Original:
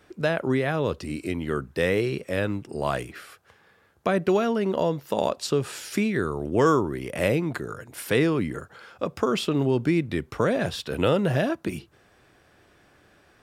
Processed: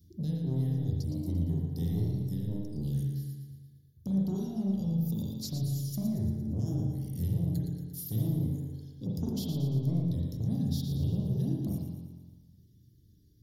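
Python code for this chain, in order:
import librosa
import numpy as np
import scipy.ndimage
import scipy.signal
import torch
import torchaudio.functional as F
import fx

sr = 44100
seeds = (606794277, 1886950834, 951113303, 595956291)

p1 = scipy.signal.sosfilt(scipy.signal.cheby1(2, 1.0, [140.0, 9000.0], 'bandstop', fs=sr, output='sos'), x)
p2 = fx.dereverb_blind(p1, sr, rt60_s=0.92)
p3 = scipy.signal.sosfilt(scipy.signal.butter(2, 50.0, 'highpass', fs=sr, output='sos'), p2)
p4 = fx.fixed_phaser(p3, sr, hz=2500.0, stages=6)
p5 = fx.over_compress(p4, sr, threshold_db=-37.0, ratio=-0.5)
p6 = p4 + (p5 * 10.0 ** (-1.0 / 20.0))
p7 = 10.0 ** (-28.0 / 20.0) * np.tanh(p6 / 10.0 ** (-28.0 / 20.0))
p8 = fx.dereverb_blind(p7, sr, rt60_s=0.83)
p9 = p8 + fx.echo_feedback(p8, sr, ms=115, feedback_pct=55, wet_db=-8, dry=0)
y = fx.rev_spring(p9, sr, rt60_s=1.0, pass_ms=(36, 46), chirp_ms=55, drr_db=-2.0)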